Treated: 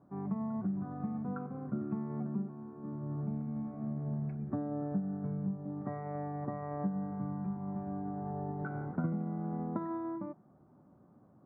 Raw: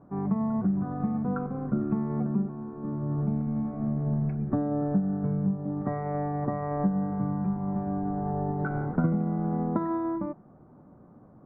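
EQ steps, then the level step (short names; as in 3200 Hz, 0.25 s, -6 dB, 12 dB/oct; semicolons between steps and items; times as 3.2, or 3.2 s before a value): HPF 66 Hz; notch 470 Hz, Q 13; -8.5 dB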